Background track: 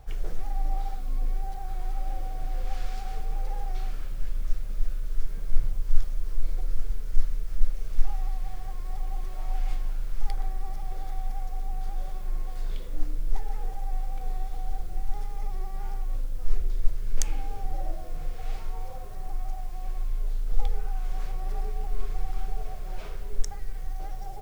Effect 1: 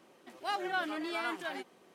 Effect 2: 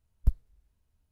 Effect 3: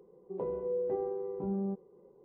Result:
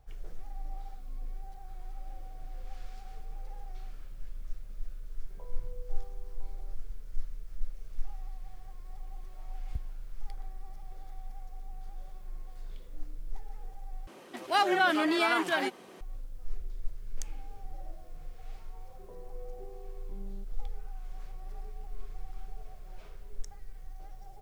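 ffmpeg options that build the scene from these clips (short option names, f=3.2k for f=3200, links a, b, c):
-filter_complex "[3:a]asplit=2[a][b];[0:a]volume=-12dB[c];[a]highpass=f=590:w=0.5412,highpass=f=590:w=1.3066[d];[1:a]alimiter=level_in=24.5dB:limit=-1dB:release=50:level=0:latency=1[e];[c]asplit=2[f][g];[f]atrim=end=14.074[h];[e]atrim=end=1.94,asetpts=PTS-STARTPTS,volume=-14.5dB[i];[g]atrim=start=16.006[j];[d]atrim=end=2.24,asetpts=PTS-STARTPTS,volume=-12dB,afade=t=in:d=0.004:c=hsin,afade=t=out:st=2.236:d=0.004:c=hsin,adelay=5000[k];[2:a]atrim=end=1.11,asetpts=PTS-STARTPTS,volume=-11.5dB,afade=t=in:d=0.004:c=hsin,afade=t=out:st=1.106:d=0.004:c=hsin,adelay=9480[l];[b]atrim=end=2.24,asetpts=PTS-STARTPTS,volume=-16dB,afade=t=in:d=0.004:c=hsin,afade=t=out:st=2.236:d=0.004:c=hsin,adelay=18690[m];[h][i]acrossfade=d=0.004:c1=hsin:c2=hsin[n];[n][j]acrossfade=d=0.004:c1=hsin:c2=hsin[o];[o][k][l][m]amix=inputs=4:normalize=0"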